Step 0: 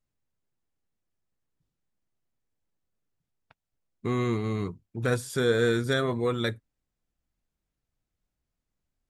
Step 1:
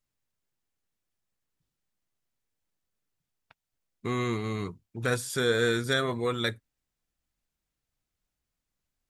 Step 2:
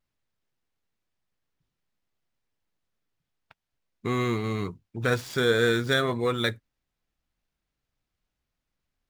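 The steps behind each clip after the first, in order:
tilt shelf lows -3.5 dB
median filter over 5 samples; vibrato 0.52 Hz 11 cents; trim +3 dB

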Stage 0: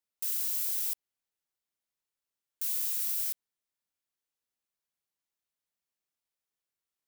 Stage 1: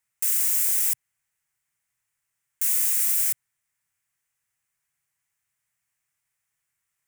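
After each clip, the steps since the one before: graphic EQ 125/250/500/2000/4000/8000 Hz +11/-9/-7/+9/-9/+7 dB; trim +8 dB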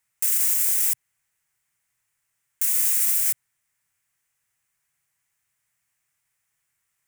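peak limiter -15 dBFS, peak gain reduction 5.5 dB; trim +4 dB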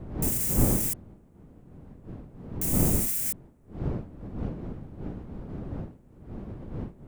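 wind noise 220 Hz -25 dBFS; trim -7.5 dB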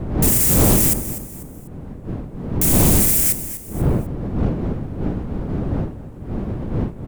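feedback delay 247 ms, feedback 35%, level -14.5 dB; sine folder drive 10 dB, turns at -9.5 dBFS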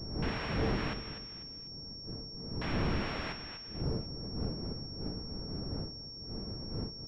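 feedback comb 450 Hz, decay 0.32 s, harmonics odd, mix 70%; class-D stage that switches slowly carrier 5.5 kHz; trim -6.5 dB

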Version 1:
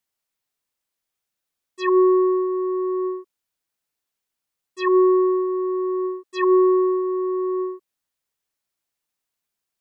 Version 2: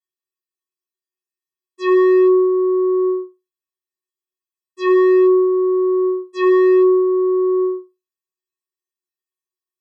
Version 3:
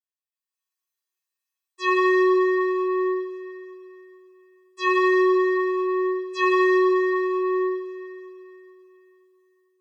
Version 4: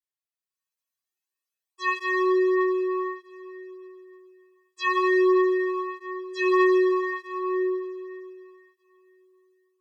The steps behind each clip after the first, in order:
bass shelf 490 Hz +3 dB; wavefolder -12.5 dBFS; feedback comb 370 Hz, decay 0.23 s, harmonics odd, mix 100%; trim +6.5 dB
high-pass 760 Hz 12 dB/octave; level rider gain up to 12.5 dB; Schroeder reverb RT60 3.3 s, combs from 33 ms, DRR 1.5 dB; trim -9 dB
cancelling through-zero flanger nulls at 0.25 Hz, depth 4.4 ms

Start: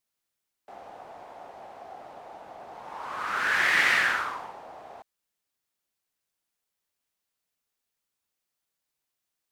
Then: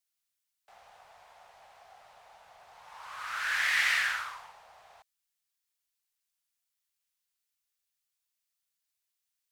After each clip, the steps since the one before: amplifier tone stack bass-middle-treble 10-0-10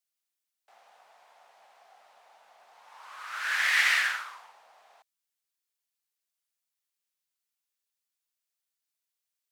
high-pass 220 Hz 24 dB/octave; upward expansion 1.5:1, over -38 dBFS; trim +4 dB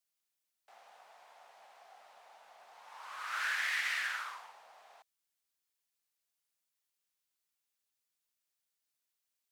compression 12:1, threshold -31 dBFS, peak gain reduction 12.5 dB

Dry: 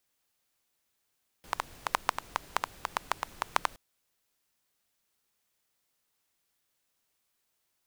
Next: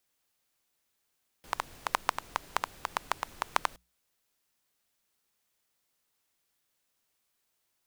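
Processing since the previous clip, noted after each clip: hum notches 60/120/180 Hz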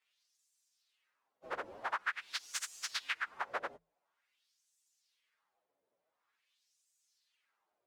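frequency axis rescaled in octaves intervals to 128%; LFO band-pass sine 0.47 Hz 500–7300 Hz; compression 4:1, threshold -52 dBFS, peak gain reduction 15 dB; trim +17 dB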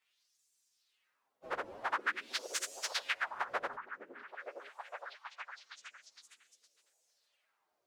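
repeats whose band climbs or falls 461 ms, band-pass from 280 Hz, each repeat 0.7 oct, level -1 dB; trim +2 dB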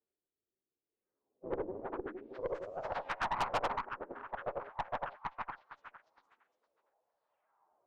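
in parallel at -9 dB: bit crusher 8-bit; on the sum: low-pass sweep 390 Hz -> 930 Hz, 2.19–3.16 s; valve stage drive 34 dB, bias 0.65; trim +6 dB

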